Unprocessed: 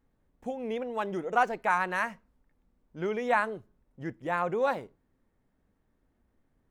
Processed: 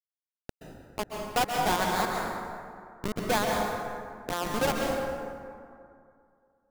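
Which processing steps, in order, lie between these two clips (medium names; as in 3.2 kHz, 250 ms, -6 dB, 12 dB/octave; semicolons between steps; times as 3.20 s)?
square wave that keeps the level; bit crusher 4-bit; plate-style reverb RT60 2.4 s, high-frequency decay 0.45×, pre-delay 115 ms, DRR -0.5 dB; trim -6.5 dB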